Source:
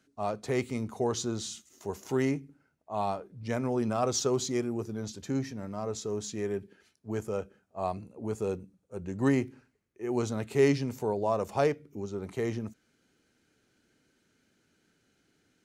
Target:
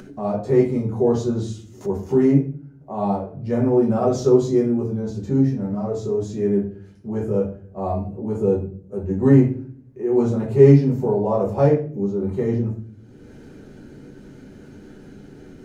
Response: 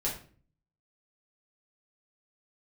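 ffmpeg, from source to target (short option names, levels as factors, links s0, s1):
-filter_complex "[0:a]tiltshelf=f=1200:g=8[s0];[1:a]atrim=start_sample=2205[s1];[s0][s1]afir=irnorm=-1:irlink=0,acompressor=mode=upward:threshold=0.0708:ratio=2.5,volume=0.75"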